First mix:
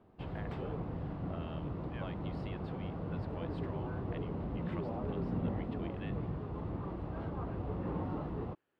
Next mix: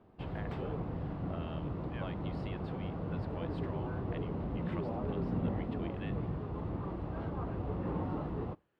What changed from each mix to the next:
reverb: on, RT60 0.40 s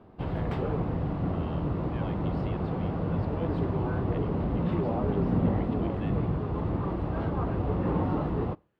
background +8.5 dB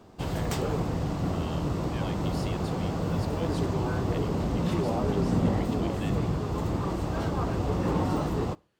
master: remove air absorption 460 m

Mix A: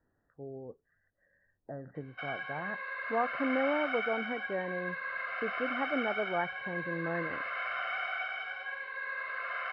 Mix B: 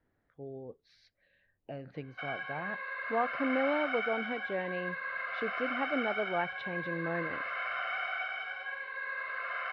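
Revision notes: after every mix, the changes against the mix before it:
speech: remove brick-wall FIR low-pass 2000 Hz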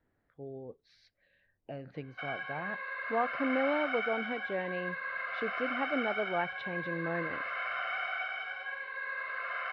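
none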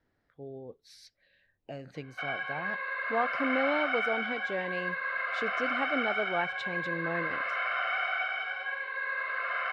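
speech: remove air absorption 300 m; background +4.5 dB

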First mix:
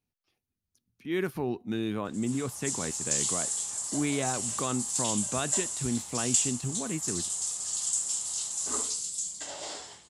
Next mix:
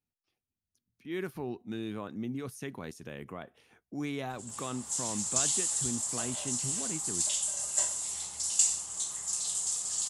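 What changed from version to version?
speech -6.0 dB; background: entry +2.25 s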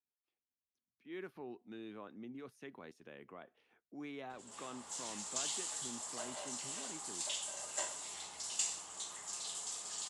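speech -9.0 dB; master: add three-band isolator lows -14 dB, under 220 Hz, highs -14 dB, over 4200 Hz

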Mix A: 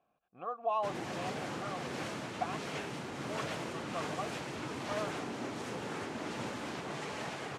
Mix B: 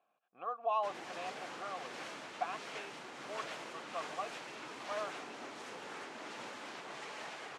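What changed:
background -4.5 dB; master: add weighting filter A

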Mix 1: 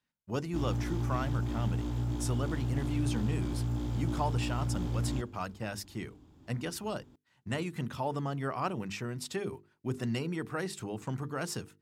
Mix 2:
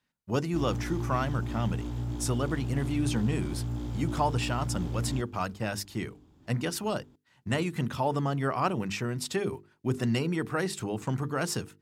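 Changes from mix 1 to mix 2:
speech +5.5 dB; reverb: off

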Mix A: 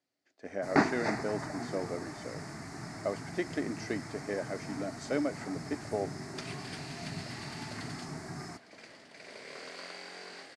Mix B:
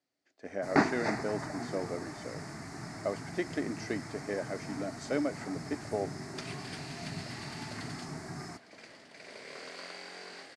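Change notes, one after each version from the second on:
none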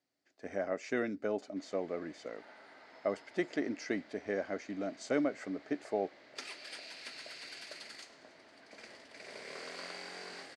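first sound: muted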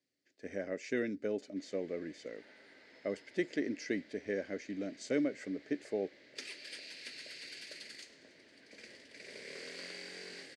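master: add band shelf 950 Hz -12 dB 1.3 oct

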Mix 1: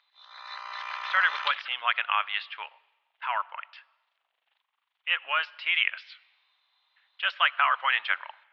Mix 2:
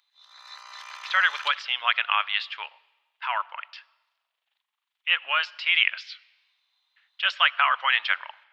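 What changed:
background -8.5 dB; master: remove air absorption 280 m

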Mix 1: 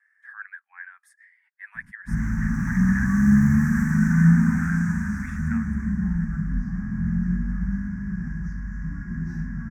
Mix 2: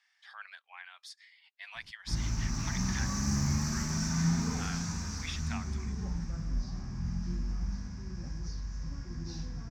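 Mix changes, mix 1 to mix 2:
background -5.5 dB; master: remove EQ curve 120 Hz 0 dB, 210 Hz +13 dB, 510 Hz -27 dB, 830 Hz -6 dB, 1200 Hz 0 dB, 1700 Hz +13 dB, 3000 Hz -23 dB, 4400 Hz -28 dB, 9100 Hz 0 dB

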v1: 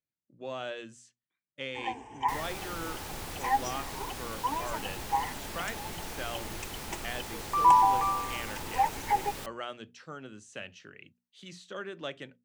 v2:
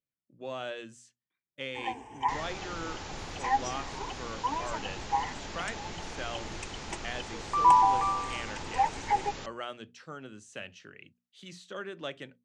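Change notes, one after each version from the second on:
second sound: add brick-wall FIR low-pass 7400 Hz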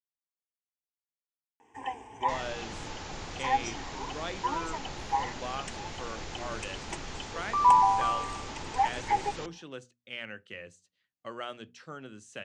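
speech: entry +1.80 s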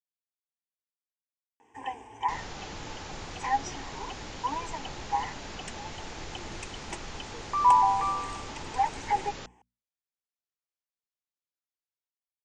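speech: muted

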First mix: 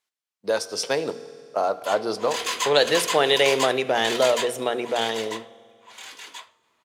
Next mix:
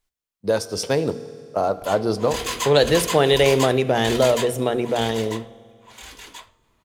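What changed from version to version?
master: remove weighting filter A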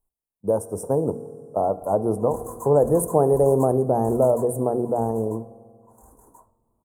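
background -5.5 dB; master: add elliptic band-stop 950–8900 Hz, stop band 60 dB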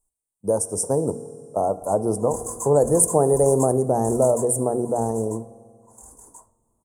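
master: add band shelf 4600 Hz +15.5 dB 2.4 oct

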